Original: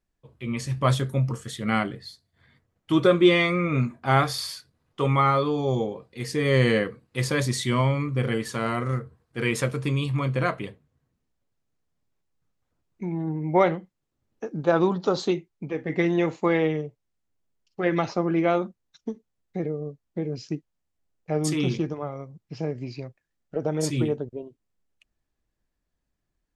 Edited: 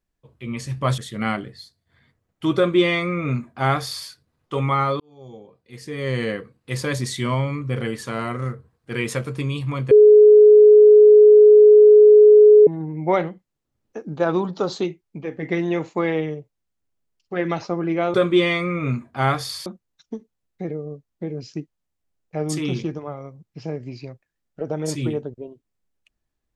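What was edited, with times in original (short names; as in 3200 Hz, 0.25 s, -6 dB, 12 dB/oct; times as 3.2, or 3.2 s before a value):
0.98–1.45 cut
3.03–4.55 copy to 18.61
5.47–7.35 fade in
10.38–13.14 bleep 422 Hz -6 dBFS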